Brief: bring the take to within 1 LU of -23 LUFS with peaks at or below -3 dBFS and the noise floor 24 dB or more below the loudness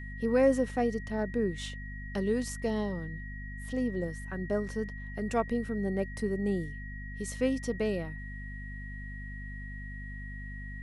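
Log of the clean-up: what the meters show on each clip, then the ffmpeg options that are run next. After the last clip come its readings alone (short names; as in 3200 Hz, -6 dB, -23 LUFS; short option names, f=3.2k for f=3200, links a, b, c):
hum 50 Hz; harmonics up to 250 Hz; hum level -39 dBFS; steady tone 1900 Hz; tone level -45 dBFS; loudness -33.5 LUFS; peak -13.5 dBFS; loudness target -23.0 LUFS
-> -af "bandreject=f=50:t=h:w=6,bandreject=f=100:t=h:w=6,bandreject=f=150:t=h:w=6,bandreject=f=200:t=h:w=6,bandreject=f=250:t=h:w=6"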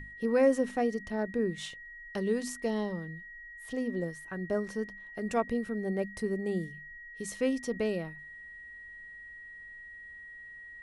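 hum none; steady tone 1900 Hz; tone level -45 dBFS
-> -af "bandreject=f=1.9k:w=30"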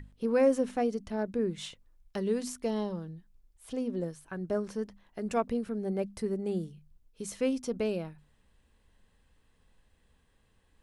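steady tone none; loudness -32.5 LUFS; peak -15.0 dBFS; loudness target -23.0 LUFS
-> -af "volume=9.5dB"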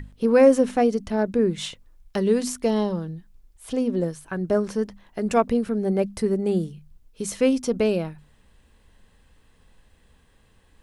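loudness -23.5 LUFS; peak -5.5 dBFS; noise floor -59 dBFS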